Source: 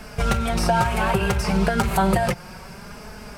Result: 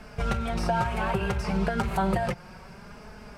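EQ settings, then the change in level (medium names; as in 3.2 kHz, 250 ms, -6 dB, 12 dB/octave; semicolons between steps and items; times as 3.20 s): low-pass 3.6 kHz 6 dB/octave; -6.0 dB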